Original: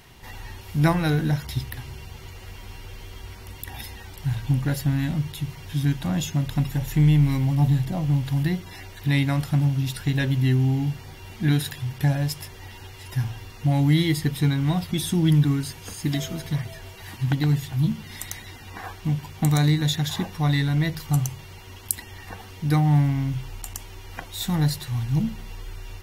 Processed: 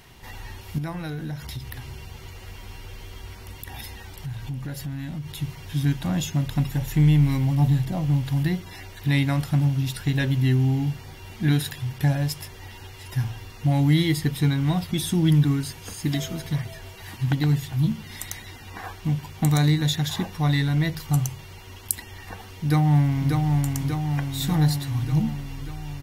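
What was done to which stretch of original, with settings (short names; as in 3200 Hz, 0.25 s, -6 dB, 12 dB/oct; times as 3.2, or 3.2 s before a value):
0.78–5.35 compressor 3:1, threshold -31 dBFS
22.52–23.36 echo throw 0.59 s, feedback 65%, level -3.5 dB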